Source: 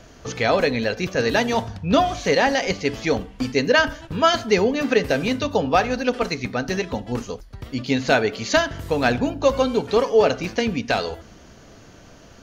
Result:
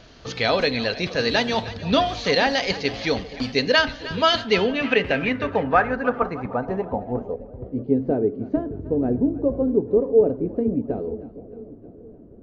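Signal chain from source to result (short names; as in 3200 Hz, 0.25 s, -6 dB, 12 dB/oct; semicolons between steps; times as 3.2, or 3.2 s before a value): split-band echo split 670 Hz, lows 0.474 s, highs 0.309 s, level -15.5 dB; low-pass sweep 4200 Hz -> 360 Hz, 4.26–8.19; wow and flutter 26 cents; gain -2.5 dB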